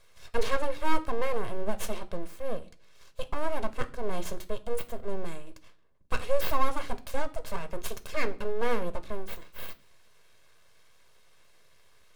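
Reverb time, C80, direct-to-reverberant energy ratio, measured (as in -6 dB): 0.45 s, 24.0 dB, 10.5 dB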